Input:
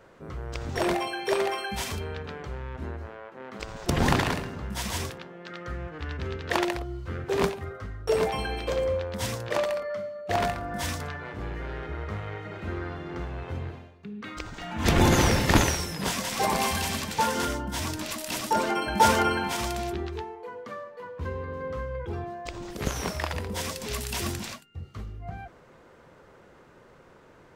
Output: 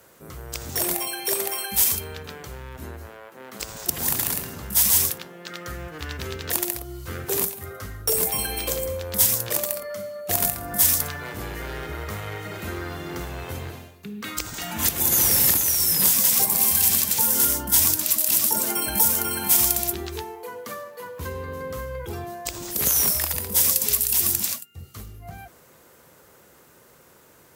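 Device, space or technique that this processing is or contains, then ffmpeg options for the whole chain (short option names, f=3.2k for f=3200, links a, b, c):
FM broadcast chain: -filter_complex "[0:a]highpass=49,dynaudnorm=f=890:g=13:m=11.5dB,acrossover=split=340|6900[a][b][c];[a]acompressor=threshold=-30dB:ratio=4[d];[b]acompressor=threshold=-30dB:ratio=4[e];[c]acompressor=threshold=-39dB:ratio=4[f];[d][e][f]amix=inputs=3:normalize=0,aemphasis=mode=production:type=50fm,alimiter=limit=-13.5dB:level=0:latency=1:release=464,asoftclip=type=hard:threshold=-16.5dB,lowpass=f=15k:w=0.5412,lowpass=f=15k:w=1.3066,aemphasis=mode=production:type=50fm,volume=-1dB"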